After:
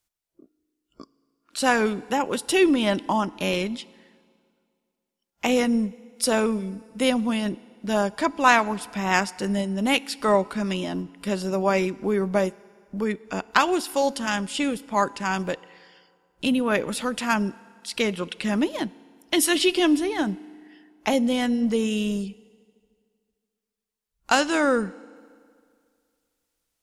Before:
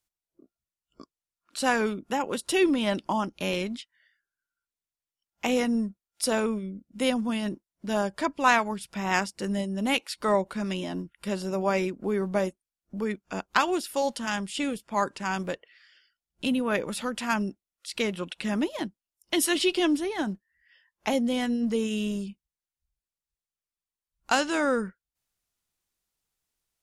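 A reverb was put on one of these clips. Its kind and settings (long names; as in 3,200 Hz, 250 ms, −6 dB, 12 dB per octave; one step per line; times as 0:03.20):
feedback delay network reverb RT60 2.2 s, low-frequency decay 0.95×, high-frequency decay 0.8×, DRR 20 dB
level +4 dB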